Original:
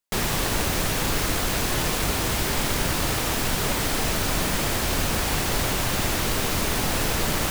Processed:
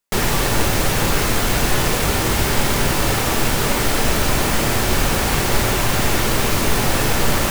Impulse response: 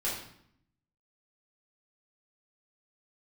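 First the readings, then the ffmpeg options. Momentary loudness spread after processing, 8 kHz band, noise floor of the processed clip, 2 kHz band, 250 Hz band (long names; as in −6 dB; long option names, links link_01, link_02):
0 LU, +4.5 dB, −20 dBFS, +6.0 dB, +6.5 dB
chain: -filter_complex "[0:a]asplit=2[link_01][link_02];[link_02]lowpass=frequency=3900:width=0.5412,lowpass=frequency=3900:width=1.3066[link_03];[1:a]atrim=start_sample=2205[link_04];[link_03][link_04]afir=irnorm=-1:irlink=0,volume=-10.5dB[link_05];[link_01][link_05]amix=inputs=2:normalize=0,volume=4.5dB"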